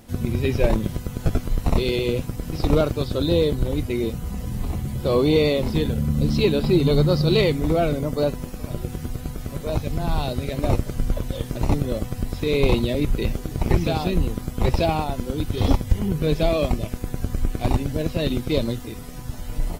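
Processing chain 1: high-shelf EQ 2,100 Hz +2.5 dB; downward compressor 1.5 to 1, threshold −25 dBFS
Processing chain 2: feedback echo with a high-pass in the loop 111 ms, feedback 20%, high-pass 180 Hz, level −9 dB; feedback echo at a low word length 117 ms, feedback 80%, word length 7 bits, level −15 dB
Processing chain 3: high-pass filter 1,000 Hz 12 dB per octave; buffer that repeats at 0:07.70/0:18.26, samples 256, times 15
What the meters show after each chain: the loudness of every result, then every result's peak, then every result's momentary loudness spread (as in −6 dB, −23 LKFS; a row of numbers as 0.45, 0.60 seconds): −26.5, −23.0, −33.5 LKFS; −10.0, −5.5, −13.5 dBFS; 9, 11, 14 LU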